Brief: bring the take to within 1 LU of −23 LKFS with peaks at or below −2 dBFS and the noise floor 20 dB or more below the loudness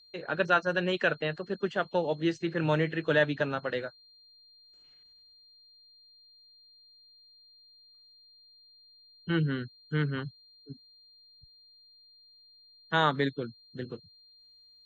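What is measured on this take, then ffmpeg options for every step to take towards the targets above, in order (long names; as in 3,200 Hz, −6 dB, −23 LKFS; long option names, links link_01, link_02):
interfering tone 4,200 Hz; level of the tone −56 dBFS; integrated loudness −30.0 LKFS; sample peak −10.5 dBFS; target loudness −23.0 LKFS
→ -af "bandreject=frequency=4200:width=30"
-af "volume=7dB"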